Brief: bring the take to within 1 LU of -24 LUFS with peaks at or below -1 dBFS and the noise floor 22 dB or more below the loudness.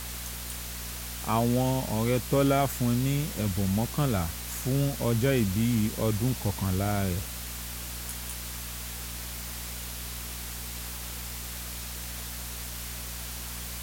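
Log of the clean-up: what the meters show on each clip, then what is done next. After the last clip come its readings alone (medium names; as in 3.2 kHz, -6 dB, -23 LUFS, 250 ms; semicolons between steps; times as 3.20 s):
hum 60 Hz; highest harmonic 240 Hz; hum level -38 dBFS; noise floor -38 dBFS; noise floor target -52 dBFS; loudness -30.0 LUFS; peak level -12.0 dBFS; loudness target -24.0 LUFS
-> de-hum 60 Hz, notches 4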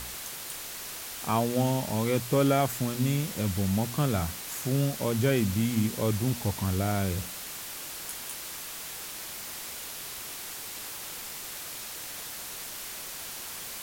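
hum not found; noise floor -40 dBFS; noise floor target -53 dBFS
-> noise reduction 13 dB, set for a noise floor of -40 dBFS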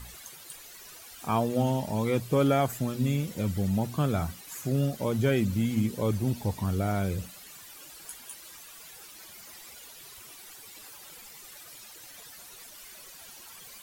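noise floor -48 dBFS; noise floor target -51 dBFS
-> noise reduction 6 dB, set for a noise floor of -48 dBFS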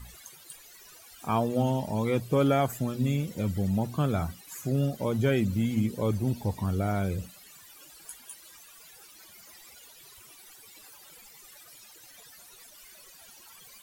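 noise floor -52 dBFS; loudness -28.5 LUFS; peak level -13.0 dBFS; loudness target -24.0 LUFS
-> trim +4.5 dB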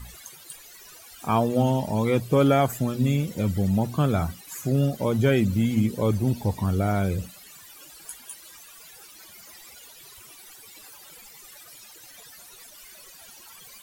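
loudness -24.0 LUFS; peak level -8.5 dBFS; noise floor -48 dBFS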